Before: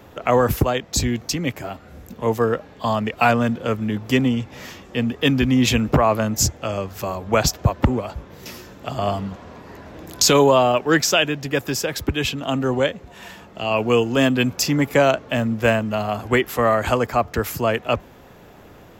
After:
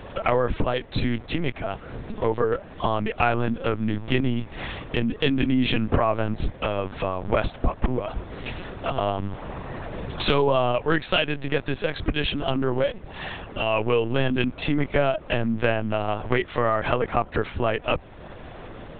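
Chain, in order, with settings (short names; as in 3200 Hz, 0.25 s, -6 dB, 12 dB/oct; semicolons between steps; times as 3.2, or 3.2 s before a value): LPC vocoder at 8 kHz pitch kept; compressor 2:1, threshold -32 dBFS, peak gain reduction 12.5 dB; gain +6 dB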